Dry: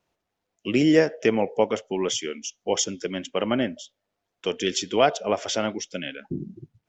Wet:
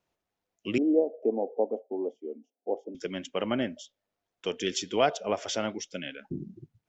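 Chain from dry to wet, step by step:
0:00.78–0:02.95: elliptic band-pass filter 240–770 Hz, stop band 40 dB
level −5 dB

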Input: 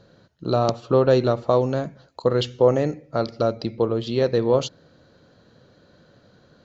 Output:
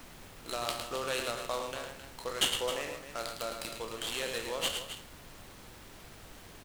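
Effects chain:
peak hold with a decay on every bin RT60 0.34 s
resonant band-pass 2,800 Hz, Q 2.4
loudspeakers that aren't time-aligned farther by 37 metres −6 dB, 91 metres −11 dB
background noise pink −53 dBFS
short delay modulated by noise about 4,400 Hz, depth 0.032 ms
level +2.5 dB

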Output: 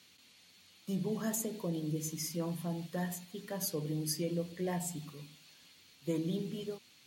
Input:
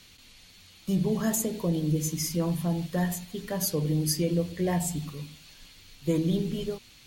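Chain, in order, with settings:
high-pass filter 160 Hz 12 dB per octave
level −7.5 dB

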